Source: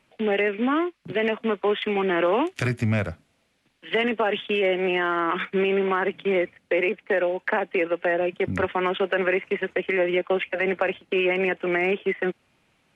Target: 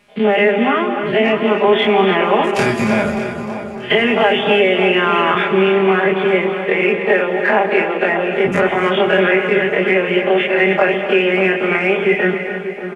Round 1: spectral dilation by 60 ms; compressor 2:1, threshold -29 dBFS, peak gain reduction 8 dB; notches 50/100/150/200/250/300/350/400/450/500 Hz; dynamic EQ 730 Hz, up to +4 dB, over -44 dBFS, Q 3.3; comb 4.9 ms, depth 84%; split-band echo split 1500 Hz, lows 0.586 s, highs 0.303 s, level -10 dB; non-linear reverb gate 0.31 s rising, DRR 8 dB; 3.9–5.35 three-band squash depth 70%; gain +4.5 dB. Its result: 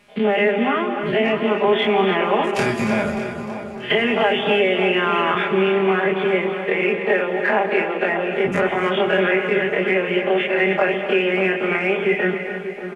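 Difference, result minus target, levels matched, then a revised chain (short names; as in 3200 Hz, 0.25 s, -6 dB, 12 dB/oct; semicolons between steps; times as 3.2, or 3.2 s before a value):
compressor: peak gain reduction +4.5 dB
spectral dilation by 60 ms; compressor 2:1, threshold -20 dBFS, peak gain reduction 3.5 dB; notches 50/100/150/200/250/300/350/400/450/500 Hz; dynamic EQ 730 Hz, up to +4 dB, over -44 dBFS, Q 3.3; comb 4.9 ms, depth 84%; split-band echo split 1500 Hz, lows 0.586 s, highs 0.303 s, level -10 dB; non-linear reverb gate 0.31 s rising, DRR 8 dB; 3.9–5.35 three-band squash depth 70%; gain +4.5 dB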